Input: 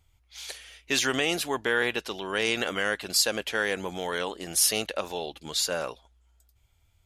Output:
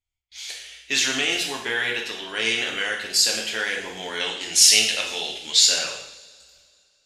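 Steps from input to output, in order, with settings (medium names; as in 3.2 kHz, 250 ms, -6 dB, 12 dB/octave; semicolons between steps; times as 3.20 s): gate with hold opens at -51 dBFS; high-order bell 3.8 kHz +8.5 dB 2.5 oct, from 4.19 s +15.5 dB; two-slope reverb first 0.69 s, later 2.5 s, from -21 dB, DRR -1 dB; trim -6 dB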